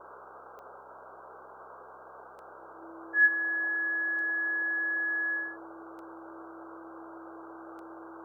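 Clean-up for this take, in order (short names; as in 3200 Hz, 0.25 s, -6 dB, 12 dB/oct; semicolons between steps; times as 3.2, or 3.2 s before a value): de-click; de-hum 65 Hz, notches 11; notch 330 Hz, Q 30; noise print and reduce 30 dB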